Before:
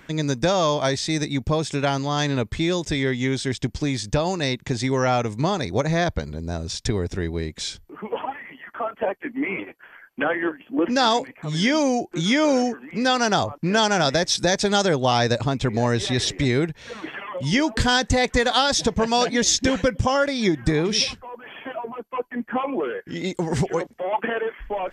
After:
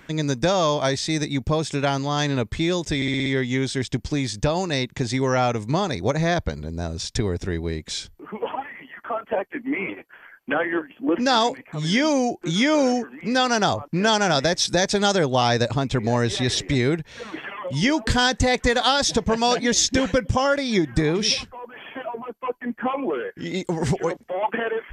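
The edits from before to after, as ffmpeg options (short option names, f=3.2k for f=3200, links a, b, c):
-filter_complex "[0:a]asplit=6[a][b][c][d][e][f];[a]atrim=end=3.022[g];[b]atrim=start=2.958:end=3.022[h];[c]atrim=start=2.958:end=3.022[i];[d]atrim=start=2.958:end=3.022[j];[e]atrim=start=2.958:end=3.022[k];[f]atrim=start=2.958[l];[g][h]acrossfade=d=0.004:c1=hsin:c2=hsin[m];[m][i]acrossfade=d=0.004:c1=hsin:c2=hsin[n];[n][j]acrossfade=d=0.004:c1=hsin:c2=hsin[o];[o][k]acrossfade=d=0.004:c1=hsin:c2=hsin[p];[p][l]acrossfade=d=0.004:c1=hsin:c2=hsin"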